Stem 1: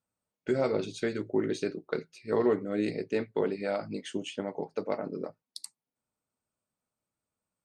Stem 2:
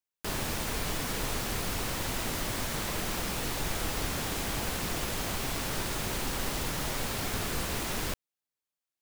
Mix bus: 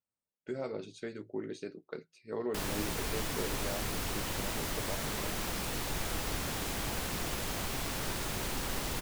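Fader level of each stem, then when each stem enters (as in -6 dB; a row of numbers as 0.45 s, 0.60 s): -10.0 dB, -3.0 dB; 0.00 s, 2.30 s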